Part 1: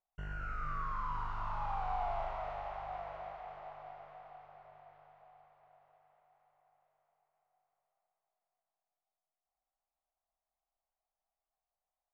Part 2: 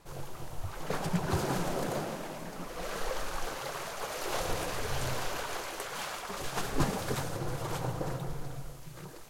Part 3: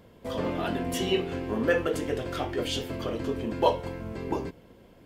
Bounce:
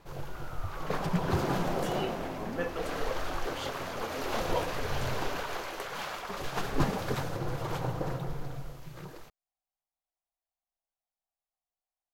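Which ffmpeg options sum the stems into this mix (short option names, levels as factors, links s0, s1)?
-filter_complex "[0:a]volume=0.473[s0];[1:a]equalizer=f=9100:t=o:w=1.2:g=-10,volume=1.19[s1];[2:a]adelay=900,volume=0.299[s2];[s0][s1][s2]amix=inputs=3:normalize=0"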